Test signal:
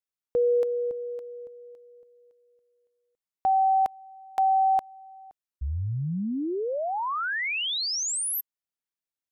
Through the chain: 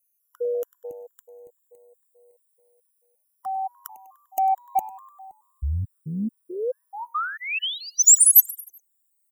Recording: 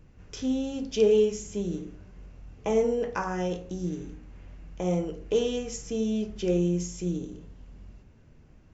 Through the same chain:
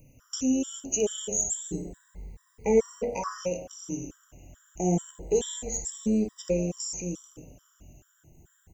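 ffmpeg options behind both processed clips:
-filter_complex "[0:a]afftfilt=real='re*pow(10,12/40*sin(2*PI*(0.91*log(max(b,1)*sr/1024/100)/log(2)-(0.28)*(pts-256)/sr)))':imag='im*pow(10,12/40*sin(2*PI*(0.91*log(max(b,1)*sr/1024/100)/log(2)-(0.28)*(pts-256)/sr)))':win_size=1024:overlap=0.75,aexciter=amount=15:drive=4.4:freq=6800,acontrast=33,asplit=2[s0][s1];[s1]asplit=4[s2][s3][s4][s5];[s2]adelay=99,afreqshift=100,volume=0.106[s6];[s3]adelay=198,afreqshift=200,volume=0.055[s7];[s4]adelay=297,afreqshift=300,volume=0.0285[s8];[s5]adelay=396,afreqshift=400,volume=0.015[s9];[s6][s7][s8][s9]amix=inputs=4:normalize=0[s10];[s0][s10]amix=inputs=2:normalize=0,afftfilt=real='re*gt(sin(2*PI*2.3*pts/sr)*(1-2*mod(floor(b*sr/1024/980),2)),0)':imag='im*gt(sin(2*PI*2.3*pts/sr)*(1-2*mod(floor(b*sr/1024/980),2)),0)':win_size=1024:overlap=0.75,volume=0.501"

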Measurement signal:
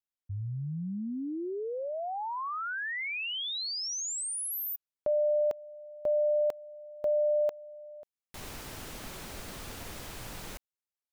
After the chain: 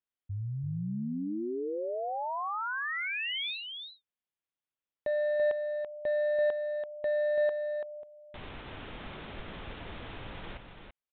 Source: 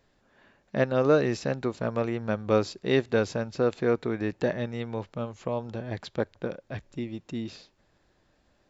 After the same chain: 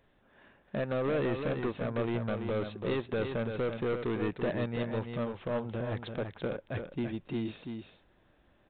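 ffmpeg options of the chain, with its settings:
-af "alimiter=limit=0.112:level=0:latency=1:release=87,aresample=8000,asoftclip=type=hard:threshold=0.0422,aresample=44100,aecho=1:1:335:0.473"

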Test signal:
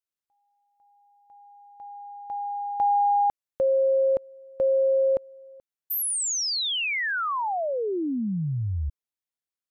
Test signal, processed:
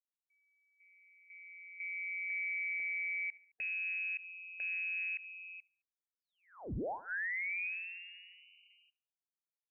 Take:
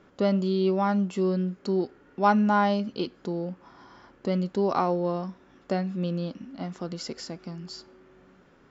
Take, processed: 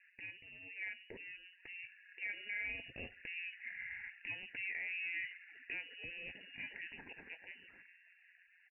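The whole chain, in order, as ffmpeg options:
-af "tremolo=f=180:d=0.621,acompressor=threshold=0.0126:ratio=4:attack=0.33:release=20:knee=1:detection=rms,afftfilt=real='re*gte(hypot(re,im),0.001)':imag='im*gte(hypot(re,im),0.001)':win_size=1024:overlap=0.75,asuperstop=centerf=1900:order=4:qfactor=1.3,dynaudnorm=f=330:g=13:m=2.66,highpass=1500,aecho=1:1:72|144|216:0.0708|0.029|0.0119,lowpass=f=2600:t=q:w=0.5098,lowpass=f=2600:t=q:w=0.6013,lowpass=f=2600:t=q:w=0.9,lowpass=f=2600:t=q:w=2.563,afreqshift=-3100,alimiter=level_in=7.94:limit=0.0631:level=0:latency=1:release=56,volume=0.126,volume=3.16"

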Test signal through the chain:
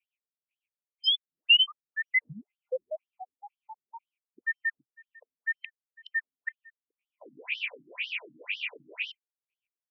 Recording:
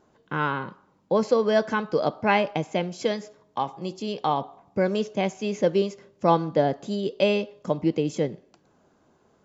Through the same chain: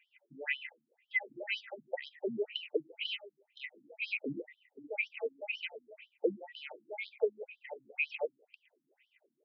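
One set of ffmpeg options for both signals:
-filter_complex "[0:a]afftfilt=real='real(if(between(b,1,1008),(2*floor((b-1)/48)+1)*48-b,b),0)':imag='imag(if(between(b,1,1008),(2*floor((b-1)/48)+1)*48-b,b),0)*if(between(b,1,1008),-1,1)':win_size=2048:overlap=0.75,firequalizer=gain_entry='entry(120,0);entry(170,-21);entry(460,-7);entry(810,-28);entry(1700,-17);entry(2400,12);entry(4000,-19);entry(6300,-22);entry(11000,-26)':delay=0.05:min_phase=1,asplit=2[s0][s1];[s1]acompressor=threshold=0.0178:ratio=12,volume=1.33[s2];[s0][s2]amix=inputs=2:normalize=0,equalizer=f=180:w=5.4:g=-13,afftfilt=real='re*between(b*sr/1024,210*pow(4300/210,0.5+0.5*sin(2*PI*2*pts/sr))/1.41,210*pow(4300/210,0.5+0.5*sin(2*PI*2*pts/sr))*1.41)':imag='im*between(b*sr/1024,210*pow(4300/210,0.5+0.5*sin(2*PI*2*pts/sr))/1.41,210*pow(4300/210,0.5+0.5*sin(2*PI*2*pts/sr))*1.41)':win_size=1024:overlap=0.75,volume=1.19"

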